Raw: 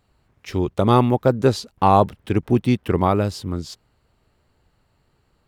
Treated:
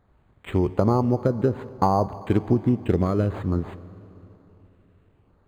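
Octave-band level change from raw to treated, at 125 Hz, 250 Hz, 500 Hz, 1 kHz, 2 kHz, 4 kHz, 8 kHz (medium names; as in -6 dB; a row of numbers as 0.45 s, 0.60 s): -2.0 dB, -2.0 dB, -4.0 dB, -7.0 dB, -7.5 dB, -13.5 dB, under -10 dB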